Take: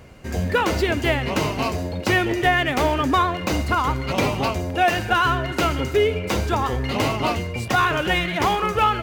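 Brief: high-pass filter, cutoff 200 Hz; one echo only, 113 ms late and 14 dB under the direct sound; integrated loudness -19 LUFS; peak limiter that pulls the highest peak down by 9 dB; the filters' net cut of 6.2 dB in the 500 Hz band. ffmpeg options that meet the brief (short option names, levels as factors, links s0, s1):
-af "highpass=200,equalizer=f=500:t=o:g=-8.5,alimiter=limit=0.133:level=0:latency=1,aecho=1:1:113:0.2,volume=2.51"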